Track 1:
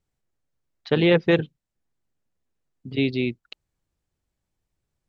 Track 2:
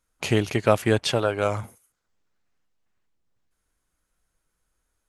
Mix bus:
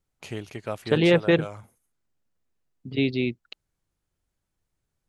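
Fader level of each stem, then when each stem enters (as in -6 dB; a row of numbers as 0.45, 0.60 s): -1.0, -13.0 dB; 0.00, 0.00 s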